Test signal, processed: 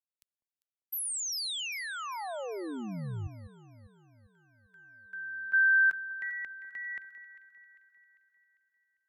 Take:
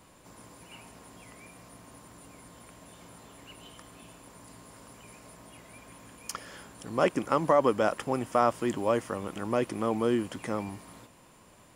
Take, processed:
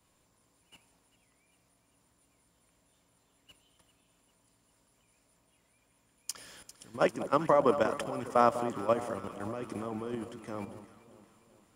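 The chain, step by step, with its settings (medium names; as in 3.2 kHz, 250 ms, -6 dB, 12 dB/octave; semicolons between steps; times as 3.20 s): level held to a coarse grid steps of 12 dB; echo whose repeats swap between lows and highs 199 ms, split 1.1 kHz, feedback 77%, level -10 dB; three bands expanded up and down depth 40%; trim -2 dB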